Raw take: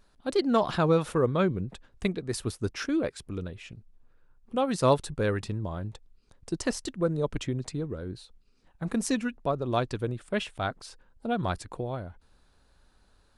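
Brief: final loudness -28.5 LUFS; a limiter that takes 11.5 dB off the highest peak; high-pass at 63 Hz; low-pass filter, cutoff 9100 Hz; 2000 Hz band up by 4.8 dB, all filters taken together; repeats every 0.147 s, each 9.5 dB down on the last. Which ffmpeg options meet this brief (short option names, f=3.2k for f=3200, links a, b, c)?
-af "highpass=63,lowpass=9.1k,equalizer=f=2k:t=o:g=6.5,alimiter=limit=-20dB:level=0:latency=1,aecho=1:1:147|294|441|588:0.335|0.111|0.0365|0.012,volume=3.5dB"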